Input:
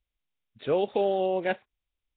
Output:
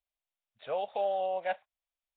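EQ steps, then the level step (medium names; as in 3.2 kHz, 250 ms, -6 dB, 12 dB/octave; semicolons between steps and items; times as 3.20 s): resonant low shelf 470 Hz -11 dB, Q 3; -7.0 dB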